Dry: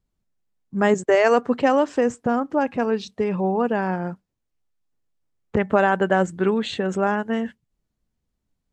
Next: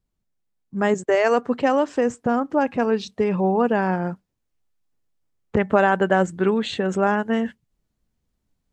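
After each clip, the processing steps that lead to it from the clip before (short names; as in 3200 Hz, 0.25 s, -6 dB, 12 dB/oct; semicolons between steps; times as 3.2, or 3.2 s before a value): vocal rider 2 s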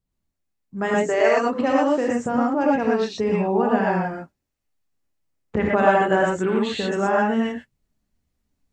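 non-linear reverb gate 0.14 s rising, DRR -3.5 dB; gain -4 dB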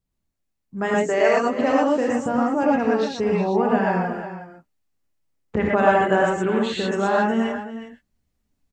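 echo 0.364 s -12 dB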